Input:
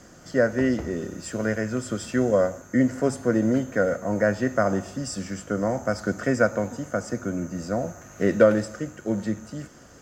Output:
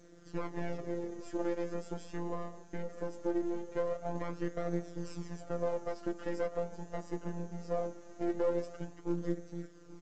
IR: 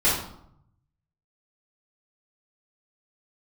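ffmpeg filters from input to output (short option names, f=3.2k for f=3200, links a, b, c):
-filter_complex "[0:a]asettb=1/sr,asplit=3[a][b][c];[a]atrim=end=1.934[d];[b]atrim=start=1.93:end=4.15,asetpts=PTS-STARTPTS,afade=t=in:d=0.004:c=qsin,afade=t=out:st=2.216:d=0.004:c=qsin,acompressor=threshold=-25dB:ratio=2.5[e];[c]atrim=start=4.146[f];[d][e]acrossfade=d=0.004:c1=hsin:c2=qsin[g];[g][f]acrossfade=d=0.004:c1=qsin:c2=hsin,aeval=exprs='max(val(0),0)':c=same,asplit=2[h][i];[i]adelay=827,lowpass=f=940:p=1,volume=-21dB,asplit=2[j][k];[k]adelay=827,lowpass=f=940:p=1,volume=0.46,asplit=2[l][m];[m]adelay=827,lowpass=f=940:p=1,volume=0.46[n];[h][j][l][n]amix=inputs=4:normalize=0,afftfilt=real='hypot(re,im)*cos(PI*b)':imag='0':win_size=1024:overlap=0.75,alimiter=limit=-17.5dB:level=0:latency=1:release=175,flanger=delay=6.3:depth=4.3:regen=2:speed=0.21:shape=sinusoidal,equalizer=f=390:w=0.66:g=11.5,volume=-6dB" -ar 16000 -c:a pcm_alaw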